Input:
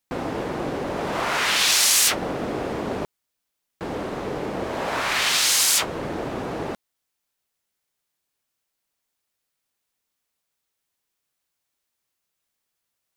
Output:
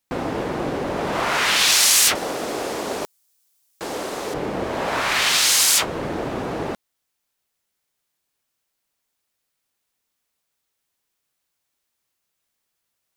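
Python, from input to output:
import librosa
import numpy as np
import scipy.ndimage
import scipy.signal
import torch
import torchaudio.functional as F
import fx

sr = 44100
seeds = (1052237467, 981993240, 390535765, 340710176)

y = fx.bass_treble(x, sr, bass_db=-12, treble_db=13, at=(2.15, 4.34))
y = y * 10.0 ** (2.5 / 20.0)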